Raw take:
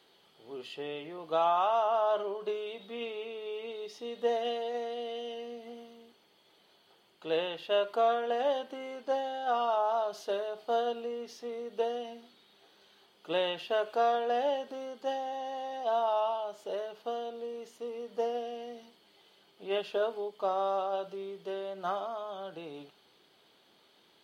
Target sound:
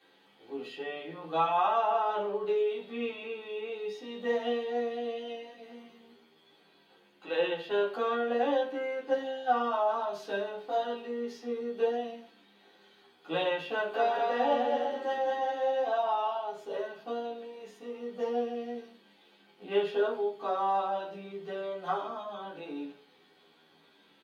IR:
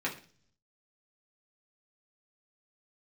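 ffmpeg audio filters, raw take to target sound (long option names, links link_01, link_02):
-filter_complex "[0:a]asettb=1/sr,asplit=3[link_01][link_02][link_03];[link_01]atrim=end=13.734[link_04];[link_02]atrim=start=13.73:end=15.87,asetpts=PTS-STARTPTS,afade=type=in:duration=0.004:curve=qsin,afade=type=out:start_time=2.136:duration=0.004:curve=qsin,aecho=1:1:210|336|411.6|457|484.2:0.631|0.398|0.251|0.158|0.1,atrim=end_sample=94374[link_05];[link_03]atrim=start=15.866[link_06];[link_04][link_05]acrossfade=duration=0.004:curve1=hsin:curve2=qsin[link_07];[link_07][link_06]acrossfade=duration=0.004:curve1=qsin:curve2=hsin[link_08];[1:a]atrim=start_sample=2205[link_09];[link_08][link_09]afir=irnorm=-1:irlink=0,asplit=2[link_10][link_11];[link_11]adelay=10.9,afreqshift=-0.58[link_12];[link_10][link_12]amix=inputs=2:normalize=1"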